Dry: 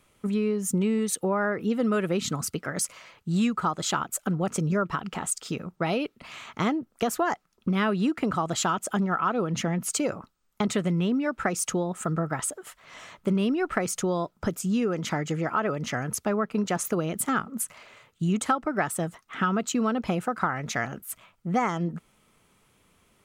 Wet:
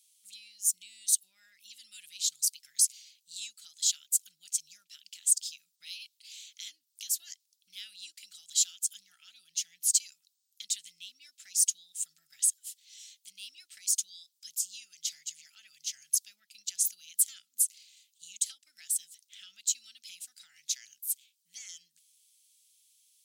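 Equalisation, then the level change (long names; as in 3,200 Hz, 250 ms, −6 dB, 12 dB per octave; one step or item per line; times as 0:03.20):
inverse Chebyshev high-pass filter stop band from 1,200 Hz, stop band 60 dB
+5.0 dB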